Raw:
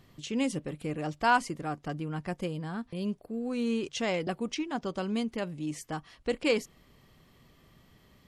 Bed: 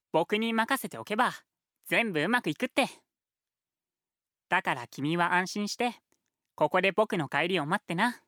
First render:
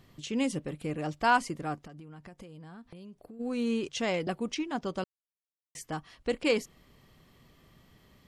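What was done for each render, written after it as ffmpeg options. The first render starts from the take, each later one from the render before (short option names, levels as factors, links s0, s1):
-filter_complex "[0:a]asplit=3[s0][s1][s2];[s0]afade=t=out:st=1.79:d=0.02[s3];[s1]acompressor=threshold=0.00708:ratio=20:attack=3.2:release=140:knee=1:detection=peak,afade=t=in:st=1.79:d=0.02,afade=t=out:st=3.39:d=0.02[s4];[s2]afade=t=in:st=3.39:d=0.02[s5];[s3][s4][s5]amix=inputs=3:normalize=0,asplit=3[s6][s7][s8];[s6]atrim=end=5.04,asetpts=PTS-STARTPTS,afade=t=out:st=5.036:d=0.004:c=hsin[s9];[s7]atrim=start=5.04:end=5.75,asetpts=PTS-STARTPTS,volume=0[s10];[s8]atrim=start=5.75,asetpts=PTS-STARTPTS,afade=t=in:d=0.004:c=hsin[s11];[s9][s10][s11]concat=n=3:v=0:a=1"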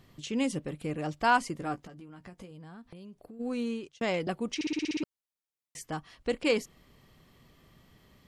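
-filter_complex "[0:a]asettb=1/sr,asplit=3[s0][s1][s2];[s0]atrim=end=1.594[s3];[s1]atrim=start=1.59:end=2.51,asetpts=PTS-STARTPTS,afade=t=in:d=0.004:c=qsin,afade=t=out:st=0.916:d=0.004:c=qsin,asplit=2[s4][s5];[s5]adelay=16,volume=0.422[s6];[s4][s6]amix=inputs=2:normalize=0,atrim=end_sample=40572[s7];[s2]atrim=start=2.506[s8];[s3][s7]acrossfade=d=0.004:c1=hsin:c2=qsin[s9];[s9][s8]acrossfade=d=0.004:c1=qsin:c2=hsin,asplit=10[s10][s11][s12][s13][s14][s15][s16][s17][s18][s19];[s10]atrim=end=4.01,asetpts=PTS-STARTPTS,afade=t=out:st=3.52:d=0.49[s20];[s11]atrim=start=4.01:end=4.612,asetpts=PTS-STARTPTS,afade=t=in:d=0.004:c=hsin[s21];[s12]atrim=start=4.548:end=4.612[s22];[s13]atrim=start=4.548:end=4.612[s23];[s14]atrim=start=4.548:end=4.612[s24];[s15]atrim=start=4.548:end=4.612[s25];[s16]atrim=start=4.548:end=4.612[s26];[s17]atrim=start=4.548:end=4.612[s27];[s18]atrim=start=4.548:end=4.612[s28];[s19]atrim=start=5.028[s29];[s20][s21]concat=n=2:v=0:a=1[s30];[s30][s22]acrossfade=d=0.004:c1=hsin:c2=hsin[s31];[s31][s23]acrossfade=d=0.004:c1=hsin:c2=hsin[s32];[s32][s24]acrossfade=d=0.004:c1=hsin:c2=hsin[s33];[s33][s25]acrossfade=d=0.004:c1=hsin:c2=hsin[s34];[s34][s26]acrossfade=d=0.004:c1=hsin:c2=hsin[s35];[s35][s27]acrossfade=d=0.004:c1=hsin:c2=hsin[s36];[s36][s28]acrossfade=d=0.004:c1=hsin:c2=hsin[s37];[s37][s29]acrossfade=d=0.004:c1=hsin:c2=hsin"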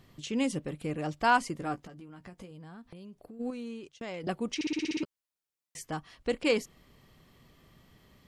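-filter_complex "[0:a]asettb=1/sr,asplit=3[s0][s1][s2];[s0]atrim=end=3.504[s3];[s1]atrim=start=3.5:end=4.24,asetpts=PTS-STARTPTS,afade=t=in:d=0.004:c=qsin,afade=t=out:st=0.736:d=0.004:c=qsin,acompressor=threshold=0.00794:ratio=2:attack=3.2:release=140:knee=1:detection=peak[s4];[s2]atrim=start=4.236[s5];[s3][s4]acrossfade=d=0.004:c1=hsin:c2=qsin[s6];[s6][s5]acrossfade=d=0.004:c1=qsin:c2=hsin,asettb=1/sr,asplit=3[s7][s8][s9];[s7]atrim=end=4.764[s10];[s8]atrim=start=4.76:end=5.91,asetpts=PTS-STARTPTS,afade=t=in:d=0.004:c=qsin,afade=t=out:st=1.146:d=0.004:c=qsin,asplit=2[s11][s12];[s12]adelay=12,volume=0.251[s13];[s11][s13]amix=inputs=2:normalize=0,atrim=end_sample=50715[s14];[s9]atrim=start=5.906[s15];[s10][s14]acrossfade=d=0.004:c1=hsin:c2=qsin[s16];[s16][s15]acrossfade=d=0.004:c1=qsin:c2=hsin"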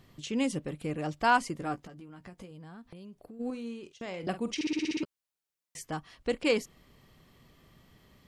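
-filter_complex "[0:a]asettb=1/sr,asplit=3[s0][s1][s2];[s0]atrim=end=3.454[s3];[s1]atrim=start=3.45:end=4.93,asetpts=PTS-STARTPTS,afade=t=in:d=0.004:c=qsin,afade=t=out:st=1.476:d=0.004:c=qsin,asplit=2[s4][s5];[s5]adelay=47,volume=0.251[s6];[s4][s6]amix=inputs=2:normalize=0,atrim=end_sample=65268[s7];[s2]atrim=start=4.926[s8];[s3][s7]acrossfade=d=0.004:c1=hsin:c2=qsin[s9];[s9][s8]acrossfade=d=0.004:c1=qsin:c2=hsin"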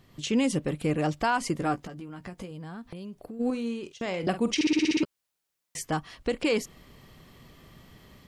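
-af "alimiter=limit=0.0668:level=0:latency=1:release=109,dynaudnorm=f=110:g=3:m=2.37"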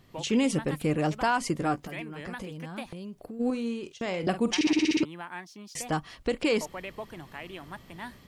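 -filter_complex "[1:a]volume=0.2[s0];[0:a][s0]amix=inputs=2:normalize=0"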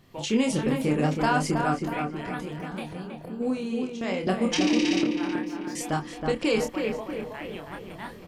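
-filter_complex "[0:a]asplit=2[s0][s1];[s1]adelay=27,volume=0.596[s2];[s0][s2]amix=inputs=2:normalize=0,asplit=2[s3][s4];[s4]adelay=321,lowpass=f=1800:p=1,volume=0.631,asplit=2[s5][s6];[s6]adelay=321,lowpass=f=1800:p=1,volume=0.55,asplit=2[s7][s8];[s8]adelay=321,lowpass=f=1800:p=1,volume=0.55,asplit=2[s9][s10];[s10]adelay=321,lowpass=f=1800:p=1,volume=0.55,asplit=2[s11][s12];[s12]adelay=321,lowpass=f=1800:p=1,volume=0.55,asplit=2[s13][s14];[s14]adelay=321,lowpass=f=1800:p=1,volume=0.55,asplit=2[s15][s16];[s16]adelay=321,lowpass=f=1800:p=1,volume=0.55[s17];[s3][s5][s7][s9][s11][s13][s15][s17]amix=inputs=8:normalize=0"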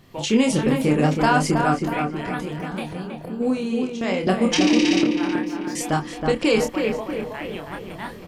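-af "volume=1.88"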